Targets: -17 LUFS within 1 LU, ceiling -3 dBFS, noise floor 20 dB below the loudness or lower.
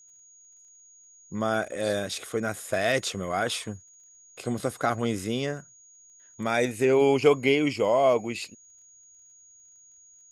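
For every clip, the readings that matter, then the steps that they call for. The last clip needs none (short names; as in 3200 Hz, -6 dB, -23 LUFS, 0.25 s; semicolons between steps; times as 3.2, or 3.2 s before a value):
ticks 15/s; steady tone 6700 Hz; tone level -52 dBFS; loudness -26.0 LUFS; peak -7.0 dBFS; loudness target -17.0 LUFS
-> de-click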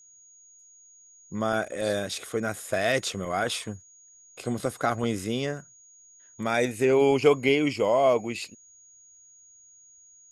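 ticks 0.097/s; steady tone 6700 Hz; tone level -52 dBFS
-> notch 6700 Hz, Q 30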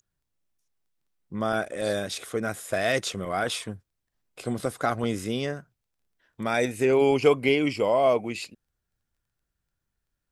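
steady tone none; loudness -26.0 LUFS; peak -7.0 dBFS; loudness target -17.0 LUFS
-> gain +9 dB; limiter -3 dBFS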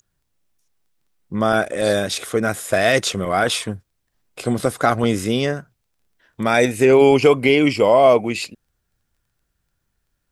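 loudness -17.5 LUFS; peak -3.0 dBFS; noise floor -73 dBFS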